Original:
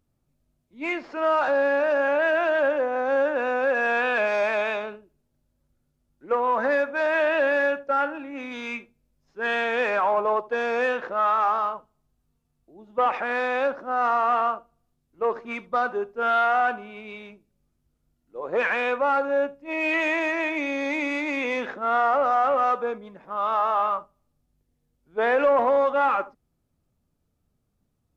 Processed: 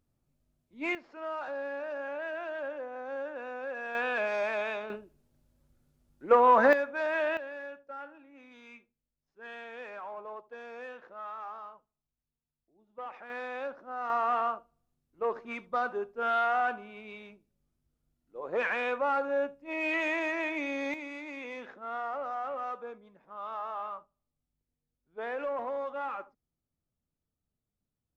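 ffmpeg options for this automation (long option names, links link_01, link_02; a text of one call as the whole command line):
ffmpeg -i in.wav -af "asetnsamples=nb_out_samples=441:pad=0,asendcmd='0.95 volume volume -15dB;3.95 volume volume -7.5dB;4.9 volume volume 2.5dB;6.73 volume volume -7.5dB;7.37 volume volume -19.5dB;13.3 volume volume -13dB;14.1 volume volume -6.5dB;20.94 volume volume -14.5dB',volume=-4dB" out.wav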